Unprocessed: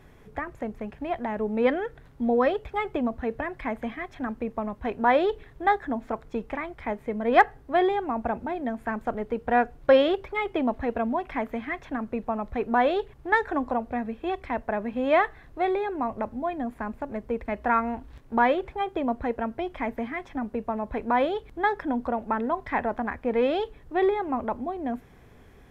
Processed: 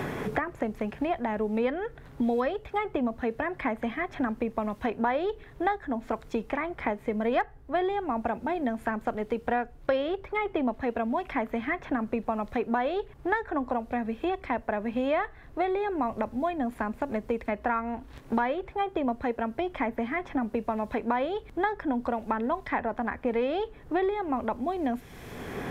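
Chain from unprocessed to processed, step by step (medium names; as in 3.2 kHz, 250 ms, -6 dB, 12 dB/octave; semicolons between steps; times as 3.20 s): three bands compressed up and down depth 100%; trim -2.5 dB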